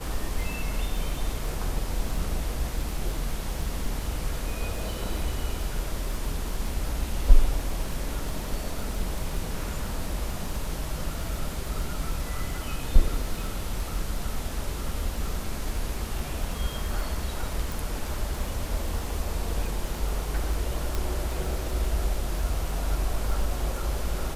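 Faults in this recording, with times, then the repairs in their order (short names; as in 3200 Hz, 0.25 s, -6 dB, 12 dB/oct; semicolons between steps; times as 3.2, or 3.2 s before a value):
crackle 21/s -31 dBFS
17.72 pop
20.95 pop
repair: de-click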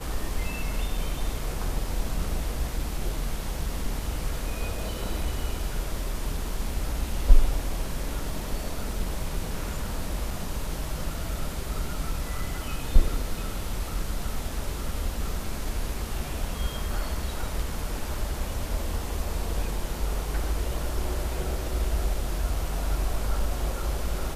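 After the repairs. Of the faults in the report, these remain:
none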